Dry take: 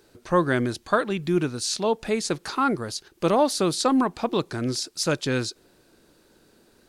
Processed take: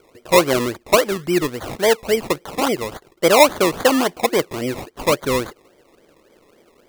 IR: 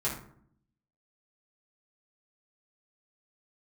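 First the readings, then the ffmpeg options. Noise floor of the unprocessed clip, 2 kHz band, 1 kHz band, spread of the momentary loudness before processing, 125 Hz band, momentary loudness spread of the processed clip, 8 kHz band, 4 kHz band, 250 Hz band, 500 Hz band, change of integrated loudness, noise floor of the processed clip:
−60 dBFS, +8.0 dB, +5.5 dB, 6 LU, −0.5 dB, 12 LU, +5.0 dB, +6.0 dB, +2.5 dB, +8.0 dB, +6.5 dB, −57 dBFS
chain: -af "equalizer=frequency=550:width=0.88:gain=13.5,acrusher=samples=23:mix=1:aa=0.000001:lfo=1:lforange=13.8:lforate=3.6,volume=-3dB"

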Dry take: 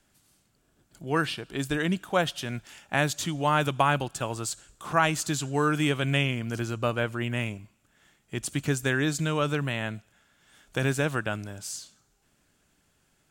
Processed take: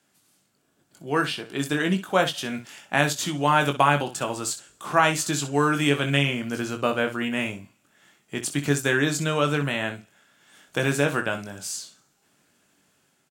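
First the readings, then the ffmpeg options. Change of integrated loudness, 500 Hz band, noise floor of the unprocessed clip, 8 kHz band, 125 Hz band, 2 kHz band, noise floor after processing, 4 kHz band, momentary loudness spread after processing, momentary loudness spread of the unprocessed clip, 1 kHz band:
+3.5 dB, +4.0 dB, −69 dBFS, +4.5 dB, +0.5 dB, +4.5 dB, −68 dBFS, +4.5 dB, 11 LU, 11 LU, +4.0 dB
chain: -af "highpass=160,dynaudnorm=framelen=810:gausssize=3:maxgain=3.5dB,aecho=1:1:21|63:0.473|0.251"

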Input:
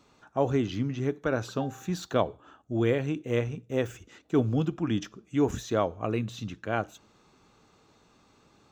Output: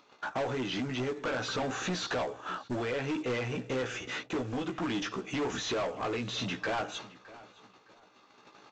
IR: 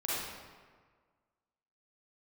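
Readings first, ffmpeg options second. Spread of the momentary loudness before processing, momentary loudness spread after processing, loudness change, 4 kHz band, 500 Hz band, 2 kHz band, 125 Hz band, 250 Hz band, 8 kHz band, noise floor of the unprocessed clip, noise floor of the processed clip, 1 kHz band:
8 LU, 5 LU, −4.0 dB, +6.0 dB, −5.0 dB, +3.0 dB, −9.0 dB, −6.0 dB, +3.0 dB, −63 dBFS, −61 dBFS, −1.0 dB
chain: -filter_complex "[0:a]acompressor=threshold=-35dB:ratio=20,agate=range=-31dB:threshold=-58dB:ratio=16:detection=peak,lowshelf=frequency=100:gain=-5.5,tremolo=f=0.56:d=0.33,asplit=2[link_01][link_02];[link_02]adelay=16,volume=-4dB[link_03];[link_01][link_03]amix=inputs=2:normalize=0,asplit=2[link_04][link_05];[link_05]highpass=frequency=720:poles=1,volume=29dB,asoftclip=type=tanh:threshold=-24dB[link_06];[link_04][link_06]amix=inputs=2:normalize=0,lowpass=frequency=4300:poles=1,volume=-6dB,lowpass=6000,asplit=2[link_07][link_08];[link_08]adelay=614,lowpass=frequency=3600:poles=1,volume=-19dB,asplit=2[link_09][link_10];[link_10]adelay=614,lowpass=frequency=3600:poles=1,volume=0.26[link_11];[link_09][link_11]amix=inputs=2:normalize=0[link_12];[link_07][link_12]amix=inputs=2:normalize=0,acompressor=mode=upward:threshold=-54dB:ratio=2.5,aresample=16000,acrusher=bits=6:mode=log:mix=0:aa=0.000001,aresample=44100"

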